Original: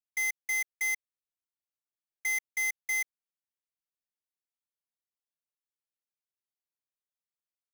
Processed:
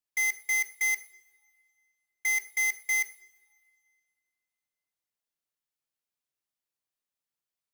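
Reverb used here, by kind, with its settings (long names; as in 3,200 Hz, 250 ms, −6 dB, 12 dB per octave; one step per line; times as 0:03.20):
coupled-rooms reverb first 0.56 s, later 2.3 s, from −20 dB, DRR 11 dB
level +2.5 dB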